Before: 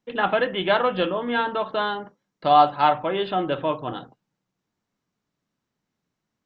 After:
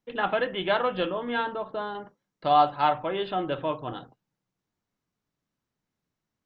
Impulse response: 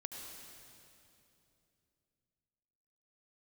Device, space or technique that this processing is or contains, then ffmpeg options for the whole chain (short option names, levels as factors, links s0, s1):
low shelf boost with a cut just above: -filter_complex "[0:a]lowshelf=f=99:g=6.5,equalizer=f=200:t=o:w=0.77:g=-2.5,asettb=1/sr,asplit=3[s0][s1][s2];[s0]atrim=end=1.544[s3];[s1]atrim=start=1.54:end=1.95,asetpts=PTS-STARTPTS,afade=t=in:d=0.004:c=qsin,afade=t=out:st=0.406:d=0.004:c=qsin,equalizer=f=2900:t=o:w=2.5:g=-10.5[s4];[s2]atrim=start=1.946[s5];[s3][s4]acrossfade=d=0.004:c1=hsin:c2=qsin[s6];[s6][s5]acrossfade=d=0.004:c1=qsin:c2=hsin,volume=0.596"